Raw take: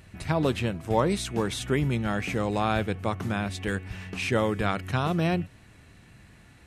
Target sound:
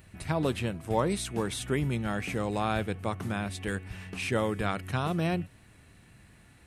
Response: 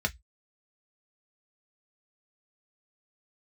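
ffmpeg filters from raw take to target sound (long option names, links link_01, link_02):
-af "aexciter=amount=1.3:drive=7.8:freq=8500,volume=-3.5dB"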